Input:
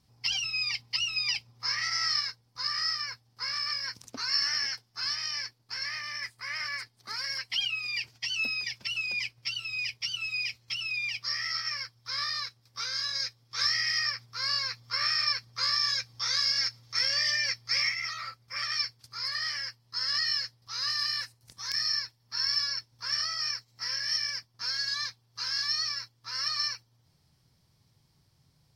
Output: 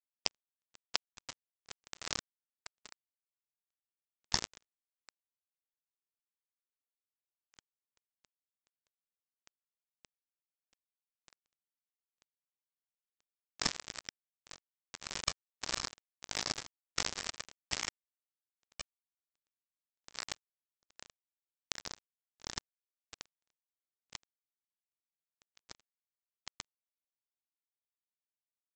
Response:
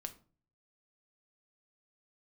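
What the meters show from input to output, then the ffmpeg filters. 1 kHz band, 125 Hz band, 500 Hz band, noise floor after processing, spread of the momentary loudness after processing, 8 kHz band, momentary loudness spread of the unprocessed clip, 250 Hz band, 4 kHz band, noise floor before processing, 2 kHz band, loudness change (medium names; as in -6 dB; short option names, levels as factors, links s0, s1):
-9.5 dB, -6.0 dB, 0.0 dB, under -85 dBFS, 20 LU, -5.0 dB, 9 LU, no reading, -16.5 dB, -68 dBFS, -16.5 dB, -10.5 dB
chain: -af "aresample=16000,acrusher=bits=2:mix=0:aa=0.5,aresample=44100,volume=2.82"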